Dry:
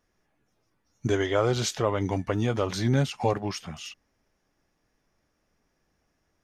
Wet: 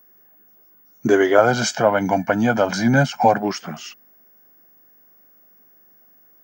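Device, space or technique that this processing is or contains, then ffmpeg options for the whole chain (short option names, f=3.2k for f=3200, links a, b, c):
old television with a line whistle: -filter_complex "[0:a]asettb=1/sr,asplit=3[a][b][c];[a]atrim=end=1.384[d];[b]atrim=start=1.38:end=3.41,asetpts=PTS-STARTPTS,afade=t=in:d=0.004:c=qsin,afade=t=out:st=2.026:d=0.004:c=qsin,aecho=1:1:1.3:0.74,atrim=end_sample=89523[e];[c]atrim=start=3.406[f];[d][e]acrossfade=d=0.004:c1=hsin:c2=qsin[g];[g][f]acrossfade=d=0.004:c1=qsin:c2=hsin,highpass=f=160:w=0.5412,highpass=f=160:w=1.3066,equalizer=f=230:t=q:w=4:g=4,equalizer=f=370:t=q:w=4:g=4,equalizer=f=680:t=q:w=4:g=5,equalizer=f=1.5k:t=q:w=4:g=6,equalizer=f=2.6k:t=q:w=4:g=-5,equalizer=f=3.7k:t=q:w=4:g=-9,lowpass=f=6.8k:w=0.5412,lowpass=f=6.8k:w=1.3066,aeval=exprs='val(0)+0.00126*sin(2*PI*15625*n/s)':c=same,volume=7.5dB"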